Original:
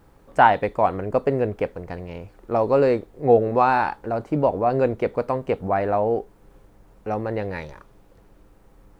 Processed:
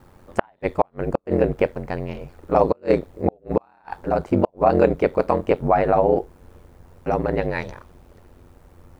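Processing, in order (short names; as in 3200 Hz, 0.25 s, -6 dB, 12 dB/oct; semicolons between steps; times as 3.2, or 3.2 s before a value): flipped gate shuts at -9 dBFS, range -41 dB; ring modulator 45 Hz; gain +7 dB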